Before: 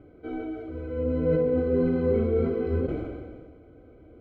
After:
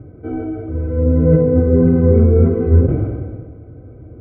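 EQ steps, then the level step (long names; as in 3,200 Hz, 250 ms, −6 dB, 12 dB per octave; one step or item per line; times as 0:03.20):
low-pass filter 1,900 Hz 12 dB per octave
high-frequency loss of the air 250 metres
parametric band 110 Hz +15 dB 1.4 octaves
+7.5 dB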